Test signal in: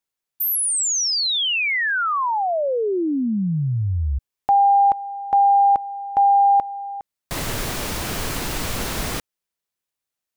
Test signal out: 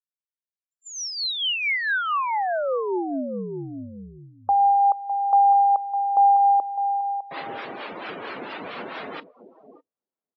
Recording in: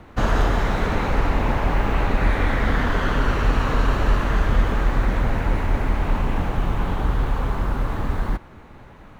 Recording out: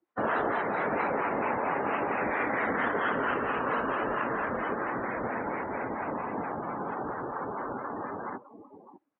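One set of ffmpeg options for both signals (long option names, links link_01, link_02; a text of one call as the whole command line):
ffmpeg -i in.wav -filter_complex "[0:a]highpass=320,lowpass=3900,acrossover=split=680[link_01][link_02];[link_01]aeval=exprs='val(0)*(1-0.5/2+0.5/2*cos(2*PI*4.4*n/s))':channel_layout=same[link_03];[link_02]aeval=exprs='val(0)*(1-0.5/2-0.5/2*cos(2*PI*4.4*n/s))':channel_layout=same[link_04];[link_03][link_04]amix=inputs=2:normalize=0,asplit=2[link_05][link_06];[link_06]adelay=606,lowpass=frequency=1000:poles=1,volume=-7dB,asplit=2[link_07][link_08];[link_08]adelay=606,lowpass=frequency=1000:poles=1,volume=0.15,asplit=2[link_09][link_10];[link_10]adelay=606,lowpass=frequency=1000:poles=1,volume=0.15[link_11];[link_07][link_09][link_11]amix=inputs=3:normalize=0[link_12];[link_05][link_12]amix=inputs=2:normalize=0,afftdn=noise_reduction=35:noise_floor=-35" -ar 16000 -c:a libmp3lame -b:a 40k out.mp3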